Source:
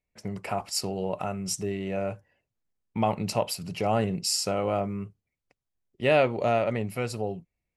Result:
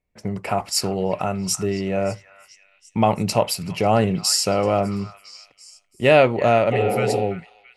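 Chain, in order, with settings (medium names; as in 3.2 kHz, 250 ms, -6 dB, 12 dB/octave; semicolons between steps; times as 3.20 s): spectral replace 6.75–7.19 s, 210–1100 Hz after; repeats whose band climbs or falls 335 ms, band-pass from 1.6 kHz, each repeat 0.7 oct, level -10.5 dB; tape noise reduction on one side only decoder only; trim +7.5 dB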